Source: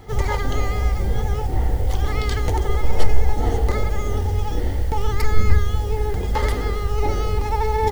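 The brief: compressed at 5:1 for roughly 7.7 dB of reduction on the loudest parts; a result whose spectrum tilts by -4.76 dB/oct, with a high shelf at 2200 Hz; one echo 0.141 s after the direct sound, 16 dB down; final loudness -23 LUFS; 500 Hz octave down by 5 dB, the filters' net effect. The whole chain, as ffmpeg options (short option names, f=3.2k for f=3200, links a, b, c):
-af "equalizer=f=500:t=o:g=-6.5,highshelf=f=2.2k:g=7,acompressor=threshold=-14dB:ratio=5,aecho=1:1:141:0.158,volume=1.5dB"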